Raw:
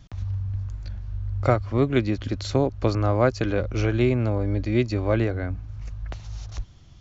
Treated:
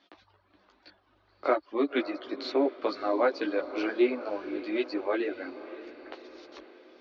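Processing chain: elliptic band-pass 310–4400 Hz, stop band 40 dB; chorus voices 4, 0.33 Hz, delay 15 ms, depth 4.9 ms; reverb removal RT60 0.82 s; on a send: echo that smears into a reverb 562 ms, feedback 56%, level -14 dB; on the sum: trim +1 dB

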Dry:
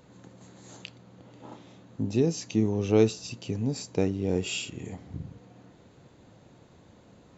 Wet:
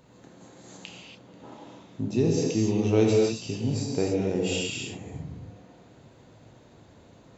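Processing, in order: gated-style reverb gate 310 ms flat, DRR -2 dB; trim -1.5 dB

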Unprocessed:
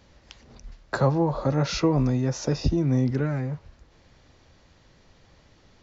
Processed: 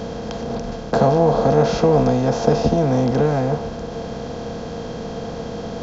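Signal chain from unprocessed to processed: spectral levelling over time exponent 0.4; small resonant body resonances 210/460/680/3200 Hz, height 17 dB, ringing for 80 ms; dynamic bell 780 Hz, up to +5 dB, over -30 dBFS, Q 1.9; trim -4 dB

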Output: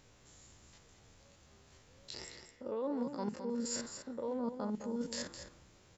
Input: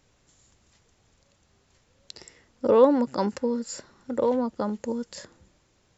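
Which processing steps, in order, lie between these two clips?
spectrogram pixelated in time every 50 ms; reverse; compression 12:1, threshold -38 dBFS, peak gain reduction 23.5 dB; reverse; delay 212 ms -9 dB; trim +3 dB

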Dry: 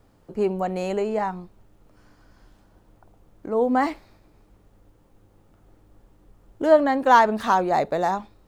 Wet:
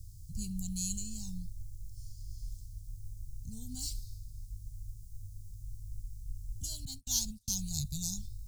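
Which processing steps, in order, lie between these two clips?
6.85–7.48 s: gate -21 dBFS, range -42 dB; inverse Chebyshev band-stop 320–2000 Hz, stop band 60 dB; trim +14 dB

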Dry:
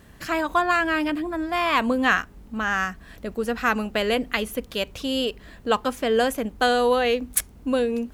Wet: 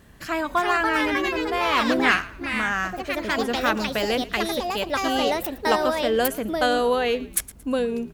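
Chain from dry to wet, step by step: ever faster or slower copies 401 ms, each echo +4 st, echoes 2; frequency-shifting echo 113 ms, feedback 31%, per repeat -65 Hz, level -18.5 dB; trim -1.5 dB

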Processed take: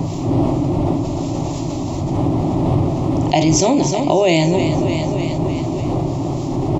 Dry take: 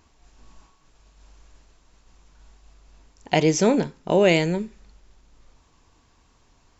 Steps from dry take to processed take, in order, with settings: wind noise 300 Hz -31 dBFS; high-pass 44 Hz; static phaser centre 310 Hz, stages 8; doubling 50 ms -13 dB; on a send: feedback delay 303 ms, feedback 52%, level -15 dB; on the sum: level flattener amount 70%; trim +4 dB

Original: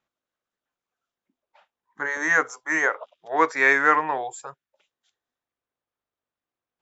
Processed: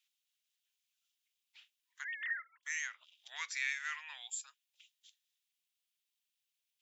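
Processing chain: 2.04–2.63 s: formants replaced by sine waves; Chebyshev high-pass 2.8 kHz, order 3; compression 2:1, threshold -53 dBFS, peak gain reduction 15 dB; trim +8 dB

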